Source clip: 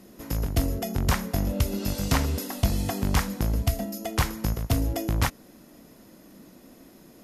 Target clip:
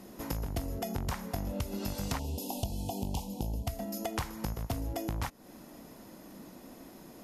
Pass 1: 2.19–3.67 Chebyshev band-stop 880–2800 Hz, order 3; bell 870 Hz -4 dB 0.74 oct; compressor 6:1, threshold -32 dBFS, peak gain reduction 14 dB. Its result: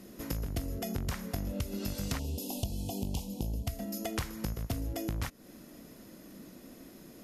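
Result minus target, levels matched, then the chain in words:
1000 Hz band -5.5 dB
2.19–3.67 Chebyshev band-stop 880–2800 Hz, order 3; bell 870 Hz +5.5 dB 0.74 oct; compressor 6:1, threshold -32 dBFS, peak gain reduction 14.5 dB

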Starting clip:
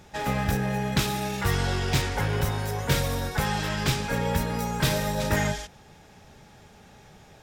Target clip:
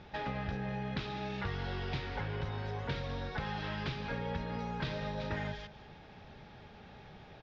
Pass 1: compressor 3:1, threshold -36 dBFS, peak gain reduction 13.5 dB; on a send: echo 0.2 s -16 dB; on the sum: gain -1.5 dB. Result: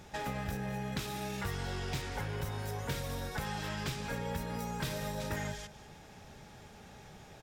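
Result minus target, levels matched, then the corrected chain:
8000 Hz band +17.5 dB
compressor 3:1, threshold -36 dBFS, peak gain reduction 13.5 dB; inverse Chebyshev low-pass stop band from 8100 Hz, stop band 40 dB; on a send: echo 0.2 s -16 dB; on the sum: gain -1.5 dB

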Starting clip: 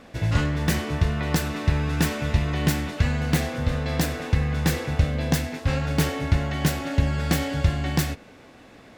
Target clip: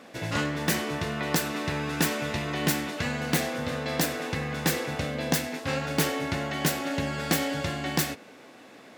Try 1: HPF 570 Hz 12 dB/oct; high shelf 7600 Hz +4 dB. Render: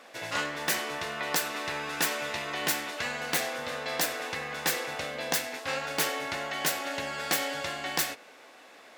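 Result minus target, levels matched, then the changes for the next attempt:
250 Hz band -9.5 dB
change: HPF 220 Hz 12 dB/oct

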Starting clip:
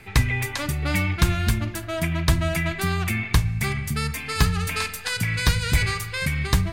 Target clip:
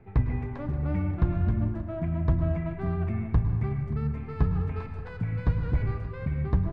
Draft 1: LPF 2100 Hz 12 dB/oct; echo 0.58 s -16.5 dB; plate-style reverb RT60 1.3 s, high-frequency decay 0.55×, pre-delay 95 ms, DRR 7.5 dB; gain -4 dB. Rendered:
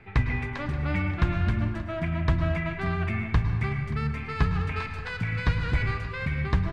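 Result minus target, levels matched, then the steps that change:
2000 Hz band +13.0 dB
change: LPF 740 Hz 12 dB/oct

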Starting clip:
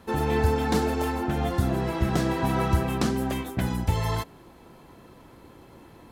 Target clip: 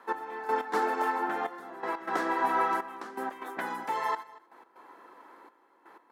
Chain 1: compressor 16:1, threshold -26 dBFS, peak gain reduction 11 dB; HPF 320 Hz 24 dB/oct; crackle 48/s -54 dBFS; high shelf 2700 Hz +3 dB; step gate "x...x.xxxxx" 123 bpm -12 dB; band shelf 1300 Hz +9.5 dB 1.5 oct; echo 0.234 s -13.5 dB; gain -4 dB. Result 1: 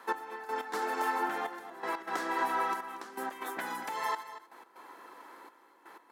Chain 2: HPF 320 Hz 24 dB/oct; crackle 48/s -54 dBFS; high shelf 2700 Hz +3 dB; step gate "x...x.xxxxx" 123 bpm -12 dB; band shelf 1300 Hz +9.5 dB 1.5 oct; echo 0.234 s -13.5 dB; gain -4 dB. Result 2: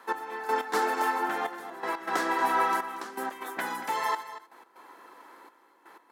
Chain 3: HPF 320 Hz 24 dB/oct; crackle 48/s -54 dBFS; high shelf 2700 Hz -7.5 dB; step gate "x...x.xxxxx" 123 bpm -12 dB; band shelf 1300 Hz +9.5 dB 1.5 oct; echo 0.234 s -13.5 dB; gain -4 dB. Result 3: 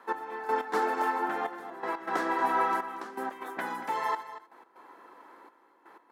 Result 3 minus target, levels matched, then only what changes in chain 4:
echo-to-direct +7.5 dB
change: echo 0.234 s -21 dB

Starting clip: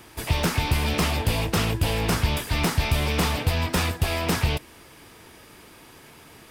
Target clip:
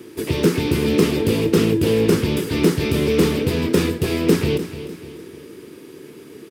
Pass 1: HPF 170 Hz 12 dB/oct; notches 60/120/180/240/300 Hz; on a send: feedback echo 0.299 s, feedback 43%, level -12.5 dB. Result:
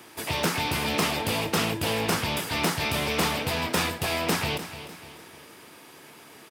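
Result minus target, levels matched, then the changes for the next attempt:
500 Hz band -4.5 dB
add after HPF: resonant low shelf 540 Hz +10 dB, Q 3

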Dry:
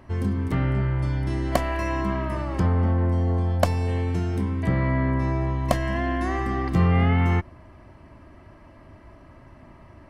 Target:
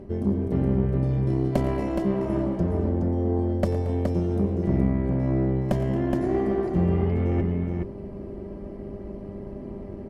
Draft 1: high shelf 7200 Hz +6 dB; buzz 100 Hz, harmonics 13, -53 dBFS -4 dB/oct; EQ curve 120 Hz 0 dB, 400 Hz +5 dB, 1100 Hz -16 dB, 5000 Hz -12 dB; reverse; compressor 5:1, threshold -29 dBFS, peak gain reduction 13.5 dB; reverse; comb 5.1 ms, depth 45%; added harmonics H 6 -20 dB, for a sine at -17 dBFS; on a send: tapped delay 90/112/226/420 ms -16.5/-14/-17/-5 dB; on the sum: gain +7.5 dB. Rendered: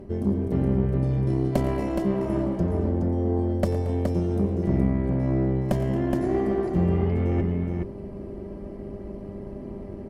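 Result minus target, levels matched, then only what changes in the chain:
8000 Hz band +3.0 dB
remove: high shelf 7200 Hz +6 dB

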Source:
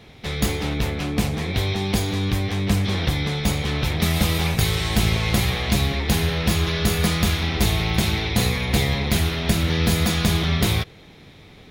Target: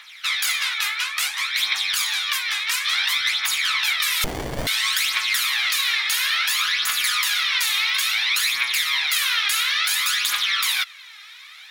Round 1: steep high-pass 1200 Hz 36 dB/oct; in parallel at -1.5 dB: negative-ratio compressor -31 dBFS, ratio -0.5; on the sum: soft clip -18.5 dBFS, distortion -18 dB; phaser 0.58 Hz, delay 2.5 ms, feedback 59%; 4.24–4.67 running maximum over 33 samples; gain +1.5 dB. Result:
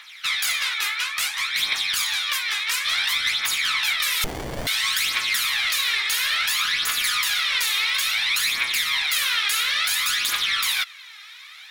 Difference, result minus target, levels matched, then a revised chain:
soft clip: distortion +10 dB
steep high-pass 1200 Hz 36 dB/oct; in parallel at -1.5 dB: negative-ratio compressor -31 dBFS, ratio -0.5; on the sum: soft clip -12 dBFS, distortion -27 dB; phaser 0.58 Hz, delay 2.5 ms, feedback 59%; 4.24–4.67 running maximum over 33 samples; gain +1.5 dB

